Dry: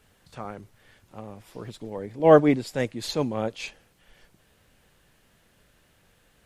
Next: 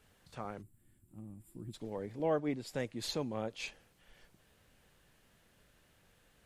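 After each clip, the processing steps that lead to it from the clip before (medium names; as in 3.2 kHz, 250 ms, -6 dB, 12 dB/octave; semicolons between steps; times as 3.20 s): time-frequency box 0.62–1.73 s, 370–7100 Hz -19 dB; compression 2.5:1, threshold -29 dBFS, peak gain reduction 13 dB; trim -5.5 dB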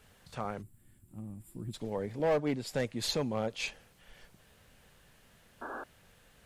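peaking EQ 320 Hz -4.5 dB 0.41 oct; hard clipper -29 dBFS, distortion -15 dB; painted sound noise, 5.61–5.84 s, 220–1700 Hz -47 dBFS; trim +6 dB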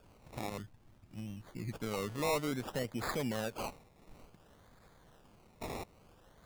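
peak limiter -27.5 dBFS, peak gain reduction 4.5 dB; decimation with a swept rate 22×, swing 60% 0.57 Hz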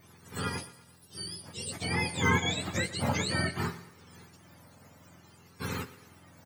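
spectrum inverted on a logarithmic axis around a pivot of 1 kHz; feedback delay 117 ms, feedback 48%, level -16.5 dB; on a send at -11.5 dB: reverberation, pre-delay 3 ms; on the sum: trim +8 dB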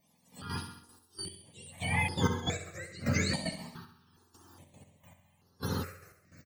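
trance gate ".....xxx.x..x" 152 bpm -12 dB; feedback delay 67 ms, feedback 53%, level -10 dB; stepped phaser 2.4 Hz 380–7800 Hz; trim +2 dB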